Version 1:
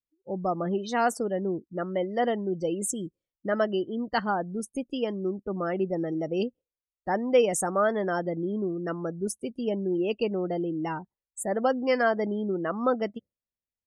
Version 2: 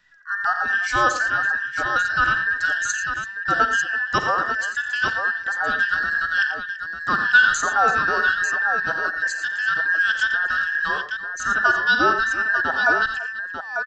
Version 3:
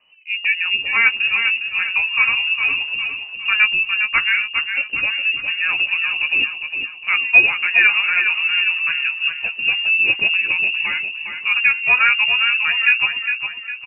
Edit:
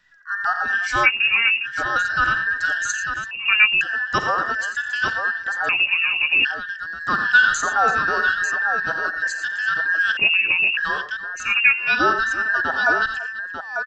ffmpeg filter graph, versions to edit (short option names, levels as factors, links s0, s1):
-filter_complex "[2:a]asplit=5[s0][s1][s2][s3][s4];[1:a]asplit=6[s5][s6][s7][s8][s9][s10];[s5]atrim=end=1.07[s11];[s0]atrim=start=1.03:end=1.67[s12];[s6]atrim=start=1.63:end=3.312[s13];[s1]atrim=start=3.308:end=3.812[s14];[s7]atrim=start=3.808:end=5.692[s15];[s2]atrim=start=5.688:end=6.452[s16];[s8]atrim=start=6.448:end=10.172[s17];[s3]atrim=start=10.168:end=10.772[s18];[s9]atrim=start=10.768:end=11.59[s19];[s4]atrim=start=11.35:end=12.01[s20];[s10]atrim=start=11.77[s21];[s11][s12]acrossfade=d=0.04:c1=tri:c2=tri[s22];[s22][s13]acrossfade=d=0.04:c1=tri:c2=tri[s23];[s23][s14]acrossfade=d=0.004:c1=hsin:c2=hsin[s24];[s24][s15]acrossfade=d=0.004:c1=hsin:c2=hsin[s25];[s25][s16]acrossfade=d=0.004:c1=hsin:c2=hsin[s26];[s26][s17]acrossfade=d=0.004:c1=hsin:c2=hsin[s27];[s27][s18]acrossfade=d=0.004:c1=hsin:c2=hsin[s28];[s28][s19]acrossfade=d=0.004:c1=hsin:c2=hsin[s29];[s29][s20]acrossfade=d=0.24:c1=tri:c2=tri[s30];[s30][s21]acrossfade=d=0.24:c1=tri:c2=tri"